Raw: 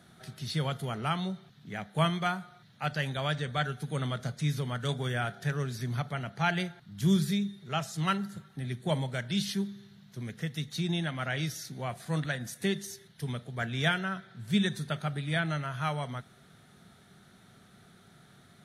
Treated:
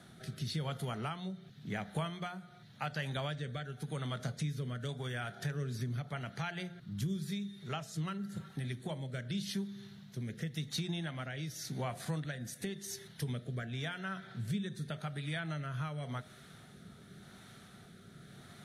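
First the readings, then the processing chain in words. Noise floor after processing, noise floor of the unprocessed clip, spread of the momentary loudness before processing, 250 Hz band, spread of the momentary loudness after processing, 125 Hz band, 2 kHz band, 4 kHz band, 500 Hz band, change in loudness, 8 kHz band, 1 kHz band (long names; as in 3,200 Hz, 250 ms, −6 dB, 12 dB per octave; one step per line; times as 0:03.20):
−56 dBFS, −59 dBFS, 11 LU, −7.5 dB, 16 LU, −5.5 dB, −9.0 dB, −7.5 dB, −7.5 dB, −7.0 dB, −4.0 dB, −9.5 dB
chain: downward compressor 10 to 1, threshold −38 dBFS, peak gain reduction 17.5 dB
hum removal 88.17 Hz, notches 8
rotating-speaker cabinet horn 0.9 Hz
level +5 dB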